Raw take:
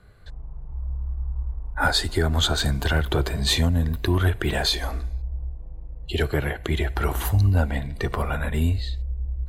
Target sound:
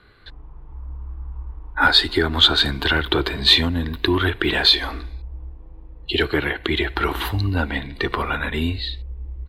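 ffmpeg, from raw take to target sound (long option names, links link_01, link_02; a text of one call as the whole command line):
ffmpeg -i in.wav -af "firequalizer=gain_entry='entry(170,0);entry(300,12);entry(620,1);entry(930,10);entry(3900,15);entry(6400,-5);entry(13000,0)':delay=0.05:min_phase=1,volume=-4dB" out.wav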